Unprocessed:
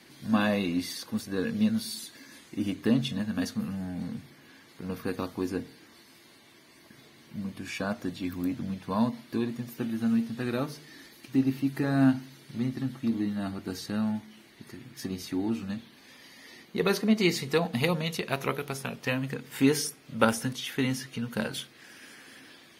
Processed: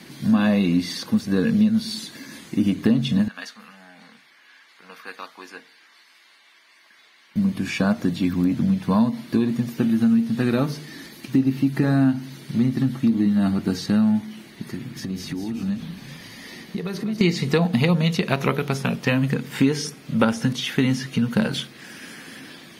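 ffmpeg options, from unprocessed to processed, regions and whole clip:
ffmpeg -i in.wav -filter_complex "[0:a]asettb=1/sr,asplit=3[link_01][link_02][link_03];[link_01]atrim=end=3.284[link_04];[link_02]atrim=start=3.28:end=7.36,asetpts=PTS-STARTPTS,afade=type=in:duration=0.004:curve=qsin,afade=type=out:start_time=4.076:duration=0.004:curve=qsin,highpass=1400,aemphasis=mode=reproduction:type=75kf[link_05];[link_03]atrim=start=7.356[link_06];[link_04][link_05]acrossfade=duration=0.004:curve1=hsin:curve2=qsin[link_07];[link_07][link_06]acrossfade=duration=0.004:curve1=qsin:curve2=hsin,asettb=1/sr,asplit=3[link_08][link_09][link_10];[link_08]atrim=end=14.764[link_11];[link_09]atrim=start=14.76:end=17.21,asetpts=PTS-STARTPTS,afade=type=in:duration=0.004:curve=qsin,afade=type=out:start_time=2.446:duration=0.004:curve=qsin,acompressor=threshold=-39dB:ratio=6:attack=3.2:release=140:knee=1:detection=peak,asplit=6[link_12][link_13][link_14][link_15][link_16][link_17];[link_13]adelay=193,afreqshift=-30,volume=-10.5dB[link_18];[link_14]adelay=386,afreqshift=-60,volume=-16.9dB[link_19];[link_15]adelay=579,afreqshift=-90,volume=-23.3dB[link_20];[link_16]adelay=772,afreqshift=-120,volume=-29.6dB[link_21];[link_17]adelay=965,afreqshift=-150,volume=-36dB[link_22];[link_12][link_18][link_19][link_20][link_21][link_22]amix=inputs=6:normalize=0,atrim=end_sample=108045[link_23];[link_10]atrim=start=17.206[link_24];[link_11][link_23]acrossfade=duration=0.004:curve1=hsin:curve2=qsin[link_25];[link_25][link_24]acrossfade=duration=0.004:curve1=qsin:curve2=hsin,acrossover=split=6700[link_26][link_27];[link_27]acompressor=threshold=-54dB:ratio=4:attack=1:release=60[link_28];[link_26][link_28]amix=inputs=2:normalize=0,equalizer=frequency=180:width=1.6:gain=8.5,acompressor=threshold=-25dB:ratio=4,volume=9dB" out.wav

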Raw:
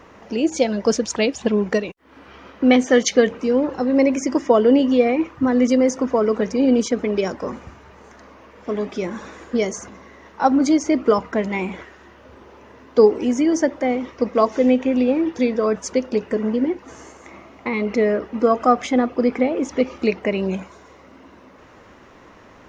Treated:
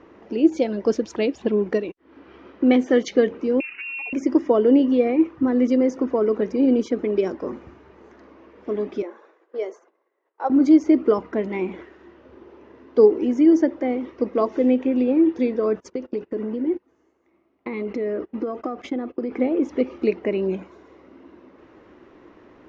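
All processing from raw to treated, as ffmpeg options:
ffmpeg -i in.wav -filter_complex "[0:a]asettb=1/sr,asplit=3[link_01][link_02][link_03];[link_01]atrim=end=3.604[link_04];[link_02]atrim=start=3.6:end=4.13,asetpts=PTS-STARTPTS,afade=type=in:duration=0.004:curve=qsin,afade=type=out:start_time=0.526:duration=0.004:curve=qsin,lowpass=frequency=2600:width_type=q:width=0.5098,lowpass=frequency=2600:width_type=q:width=0.6013,lowpass=frequency=2600:width_type=q:width=0.9,lowpass=frequency=2600:width_type=q:width=2.563,afreqshift=-3000,acompressor=threshold=-21dB:ratio=5:attack=3.2:release=140:knee=1:detection=peak[link_05];[link_03]atrim=start=4.126[link_06];[link_04][link_05]acrossfade=duration=0.004:curve1=hsin:curve2=qsin[link_07];[link_07][link_06]acrossfade=duration=0.004:curve1=qsin:curve2=hsin,asettb=1/sr,asplit=3[link_08][link_09][link_10];[link_08]atrim=end=9.024[link_11];[link_09]atrim=start=9.02:end=10.5,asetpts=PTS-STARTPTS,afade=type=in:duration=0.004:curve=qsin,afade=type=out:start_time=1.476:duration=0.004:curve=qsin,highpass=frequency=460:width=0.5412,highpass=frequency=460:width=1.3066,highshelf=frequency=2000:gain=-10.5,agate=range=-33dB:threshold=-37dB:ratio=3:release=100:detection=peak[link_12];[link_10]atrim=start=10.496[link_13];[link_11][link_12]acrossfade=duration=0.004:curve1=hsin:curve2=qsin[link_14];[link_14][link_13]acrossfade=duration=0.004:curve1=qsin:curve2=hsin,asettb=1/sr,asplit=3[link_15][link_16][link_17];[link_15]atrim=end=15.804[link_18];[link_16]atrim=start=15.8:end=19.31,asetpts=PTS-STARTPTS,afade=type=in:duration=0.004:curve=qsin,afade=type=out:start_time=3.506:duration=0.004:curve=qsin,agate=range=-21dB:threshold=-32dB:ratio=16:release=100:detection=peak,acompressor=threshold=-20dB:ratio=6:attack=3.2:release=140:knee=1:detection=peak[link_19];[link_17]atrim=start=19.306[link_20];[link_18][link_19]acrossfade=duration=0.004:curve1=hsin:curve2=qsin[link_21];[link_21][link_20]acrossfade=duration=0.004:curve1=qsin:curve2=hsin,lowpass=4100,equalizer=frequency=340:width=1.8:gain=12,volume=-7.5dB" out.wav

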